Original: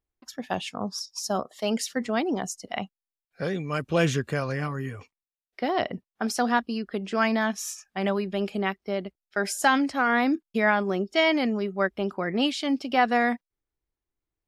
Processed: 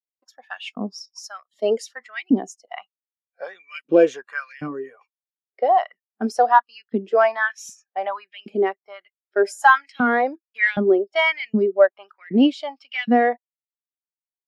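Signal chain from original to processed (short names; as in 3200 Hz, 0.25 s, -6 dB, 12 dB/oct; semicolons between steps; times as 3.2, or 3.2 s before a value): soft clip -14 dBFS, distortion -19 dB; LFO high-pass saw up 1.3 Hz 210–3200 Hz; spectral expander 1.5:1; gain +6.5 dB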